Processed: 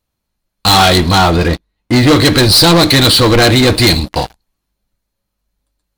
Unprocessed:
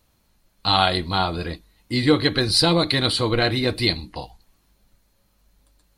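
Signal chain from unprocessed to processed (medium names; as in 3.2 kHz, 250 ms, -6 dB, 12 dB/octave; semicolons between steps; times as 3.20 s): 1.16–2.07 s: treble shelf 6.6 kHz -> 4.3 kHz -11.5 dB; waveshaping leveller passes 5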